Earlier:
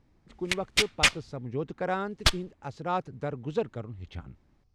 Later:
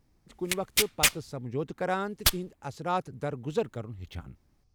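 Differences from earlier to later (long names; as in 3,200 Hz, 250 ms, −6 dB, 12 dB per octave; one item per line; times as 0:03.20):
background −4.5 dB
master: remove high-frequency loss of the air 94 metres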